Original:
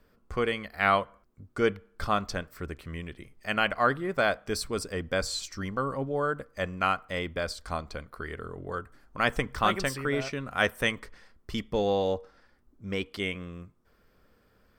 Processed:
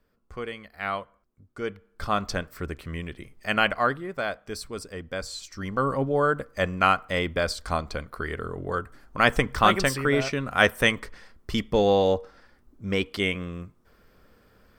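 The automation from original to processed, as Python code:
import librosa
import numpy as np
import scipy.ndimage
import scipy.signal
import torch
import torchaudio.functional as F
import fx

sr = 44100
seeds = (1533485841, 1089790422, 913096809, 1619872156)

y = fx.gain(x, sr, db=fx.line((1.64, -6.5), (2.3, 4.0), (3.67, 4.0), (4.12, -4.0), (5.43, -4.0), (5.85, 6.0)))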